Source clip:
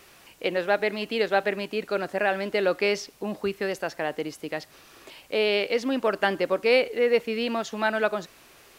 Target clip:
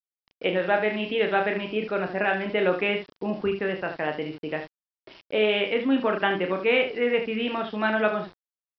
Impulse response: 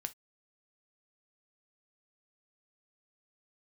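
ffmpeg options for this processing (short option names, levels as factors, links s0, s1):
-filter_complex "[0:a]equalizer=f=120:w=0.46:g=2.5,bandreject=f=359.7:t=h:w=4,bandreject=f=719.4:t=h:w=4,bandreject=f=1079.1:t=h:w=4,afftdn=nr=24:nf=-47,aresample=8000,aresample=44100,asplit=2[s0][s1];[s1]aecho=0:1:11|33|74:0.266|0.501|0.376[s2];[s0][s2]amix=inputs=2:normalize=0,adynamicequalizer=threshold=0.0178:dfrequency=540:dqfactor=2.5:tfrequency=540:tqfactor=2.5:attack=5:release=100:ratio=0.375:range=3.5:mode=cutabove:tftype=bell,aresample=11025,aeval=exprs='val(0)*gte(abs(val(0)),0.00596)':c=same,aresample=44100"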